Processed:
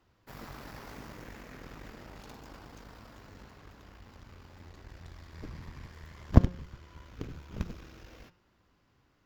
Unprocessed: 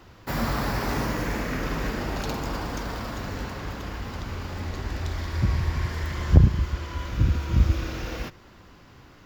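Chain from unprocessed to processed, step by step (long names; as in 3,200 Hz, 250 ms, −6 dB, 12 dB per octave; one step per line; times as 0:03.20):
harmonic generator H 3 −10 dB, 6 −17 dB, 7 −32 dB, 8 −19 dB, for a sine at −1.5 dBFS
hum removal 178.2 Hz, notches 33
level −1 dB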